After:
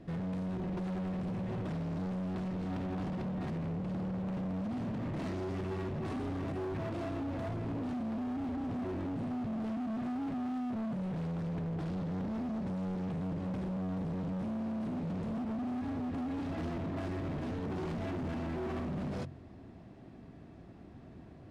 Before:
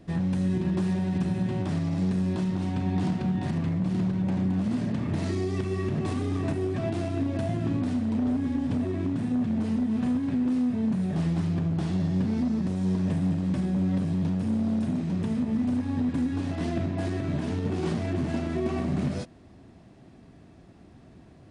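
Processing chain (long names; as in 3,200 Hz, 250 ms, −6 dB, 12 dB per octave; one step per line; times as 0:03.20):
low-pass filter 2,400 Hz 6 dB per octave
hum removal 45.38 Hz, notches 4
brickwall limiter −24.5 dBFS, peak gain reduction 7.5 dB
gain into a clipping stage and back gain 34.5 dB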